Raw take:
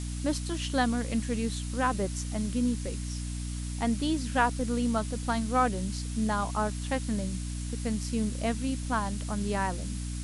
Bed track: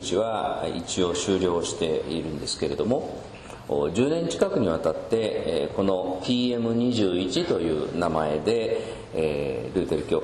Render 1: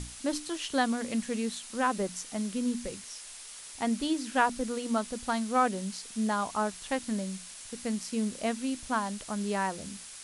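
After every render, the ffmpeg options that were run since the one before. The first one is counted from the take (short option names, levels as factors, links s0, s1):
-af "bandreject=f=60:t=h:w=6,bandreject=f=120:t=h:w=6,bandreject=f=180:t=h:w=6,bandreject=f=240:t=h:w=6,bandreject=f=300:t=h:w=6"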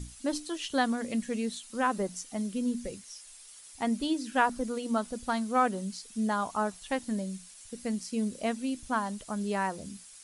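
-af "afftdn=nr=10:nf=-46"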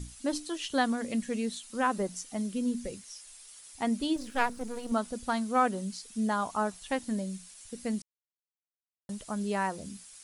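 -filter_complex "[0:a]asettb=1/sr,asplit=3[s0][s1][s2];[s0]atrim=end=4.164[s3];[s1]atrim=start=4.16:end=4.92,asetpts=PTS-STARTPTS,afade=t=in:d=0.004:c=qsin,afade=t=out:st=0.756:d=0.004:c=qsin,aeval=exprs='if(lt(val(0),0),0.251*val(0),val(0))':c=same[s4];[s2]atrim=start=4.916[s5];[s3][s4]acrossfade=d=0.004:c1=hsin:c2=qsin[s6];[s6][s5]acrossfade=d=0.004:c1=qsin:c2=hsin,asplit=3[s7][s8][s9];[s7]atrim=end=8.02,asetpts=PTS-STARTPTS,afade=t=out:st=8.016:d=0.004:c=hsin[s10];[s8]atrim=start=8.02:end=9.09,asetpts=PTS-STARTPTS,volume=0[s11];[s9]atrim=start=9.09,asetpts=PTS-STARTPTS,afade=t=in:d=0.004:c=hsin[s12];[s10][s11][s12]concat=n=3:v=0:a=1"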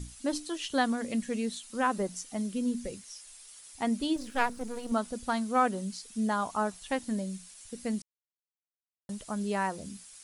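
-af anull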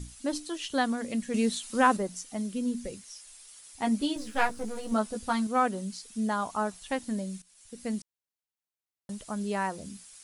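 -filter_complex "[0:a]asettb=1/sr,asplit=3[s0][s1][s2];[s0]atrim=end=1.344[s3];[s1]atrim=start=1.34:end=1.97,asetpts=PTS-STARTPTS,afade=t=in:d=0.004:c=qsin,afade=t=out:st=0.626:d=0.004:c=qsin,acontrast=53[s4];[s2]atrim=start=1.966[s5];[s3][s4]acrossfade=d=0.004:c1=hsin:c2=qsin[s6];[s6][s5]acrossfade=d=0.004:c1=qsin:c2=hsin,asettb=1/sr,asplit=3[s7][s8][s9];[s7]atrim=end=3.824[s10];[s8]atrim=start=3.82:end=5.47,asetpts=PTS-STARTPTS,afade=t=in:d=0.004:c=qsin,afade=t=out:st=1.646:d=0.004:c=qsin,asplit=2[s11][s12];[s12]adelay=14,volume=0.708[s13];[s11][s13]amix=inputs=2:normalize=0,atrim=end_sample=72765[s14];[s9]atrim=start=5.466[s15];[s10][s14]acrossfade=d=0.004:c1=hsin:c2=qsin[s16];[s16][s15]acrossfade=d=0.004:c1=qsin:c2=hsin,asplit=2[s17][s18];[s17]atrim=end=7.42,asetpts=PTS-STARTPTS,afade=t=out:st=7.416:d=0.004:c=hsin:silence=0.158489[s19];[s18]atrim=start=7.42,asetpts=PTS-STARTPTS,afade=t=in:d=0.49:silence=0.158489[s20];[s19][s20]concat=n=2:v=0:a=1"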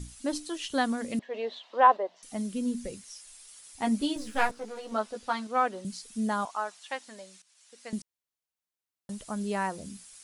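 -filter_complex "[0:a]asettb=1/sr,asplit=3[s0][s1][s2];[s0]atrim=end=1.194[s3];[s1]atrim=start=1.19:end=2.23,asetpts=PTS-STARTPTS,afade=t=in:d=0.004:c=qsin,afade=t=out:st=1.036:d=0.004:c=qsin,highpass=f=420:w=0.5412,highpass=f=420:w=1.3066,equalizer=f=660:t=q:w=4:g=9,equalizer=f=970:t=q:w=4:g=6,equalizer=f=1400:t=q:w=4:g=-7,equalizer=f=2400:t=q:w=4:g=-7,lowpass=f=3300:w=0.5412,lowpass=f=3300:w=1.3066[s4];[s2]atrim=start=2.226[s5];[s3][s4]acrossfade=d=0.004:c1=hsin:c2=qsin[s6];[s6][s5]acrossfade=d=0.004:c1=qsin:c2=hsin,asettb=1/sr,asplit=3[s7][s8][s9];[s7]atrim=end=4.514[s10];[s8]atrim=start=4.51:end=5.85,asetpts=PTS-STARTPTS,afade=t=in:d=0.004:c=qsin,afade=t=out:st=1.336:d=0.004:c=qsin,acrossover=split=320 5900:gain=0.178 1 0.224[s11][s12][s13];[s11][s12][s13]amix=inputs=3:normalize=0[s14];[s9]atrim=start=5.846[s15];[s10][s14]acrossfade=d=0.004:c1=hsin:c2=qsin[s16];[s16][s15]acrossfade=d=0.004:c1=qsin:c2=hsin,asettb=1/sr,asplit=3[s17][s18][s19];[s17]atrim=end=6.454[s20];[s18]atrim=start=6.45:end=7.93,asetpts=PTS-STARTPTS,afade=t=in:d=0.004:c=qsin,afade=t=out:st=1.476:d=0.004:c=qsin,highpass=700,lowpass=7000[s21];[s19]atrim=start=7.926[s22];[s20][s21]acrossfade=d=0.004:c1=hsin:c2=qsin[s23];[s23][s22]acrossfade=d=0.004:c1=qsin:c2=hsin"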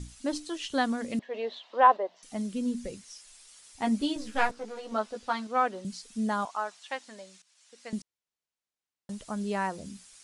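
-af "lowpass=8200"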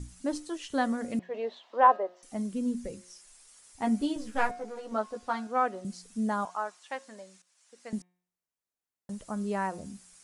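-af "equalizer=f=3600:t=o:w=1.5:g=-7.5,bandreject=f=179.9:t=h:w=4,bandreject=f=359.8:t=h:w=4,bandreject=f=539.7:t=h:w=4,bandreject=f=719.6:t=h:w=4,bandreject=f=899.5:t=h:w=4,bandreject=f=1079.4:t=h:w=4,bandreject=f=1259.3:t=h:w=4,bandreject=f=1439.2:t=h:w=4,bandreject=f=1619.1:t=h:w=4,bandreject=f=1799:t=h:w=4,bandreject=f=1978.9:t=h:w=4,bandreject=f=2158.8:t=h:w=4,bandreject=f=2338.7:t=h:w=4,bandreject=f=2518.6:t=h:w=4,bandreject=f=2698.5:t=h:w=4,bandreject=f=2878.4:t=h:w=4,bandreject=f=3058.3:t=h:w=4,bandreject=f=3238.2:t=h:w=4,bandreject=f=3418.1:t=h:w=4,bandreject=f=3598:t=h:w=4,bandreject=f=3777.9:t=h:w=4"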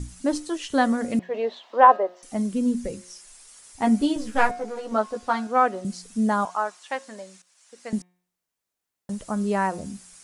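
-af "volume=2.37,alimiter=limit=0.708:level=0:latency=1"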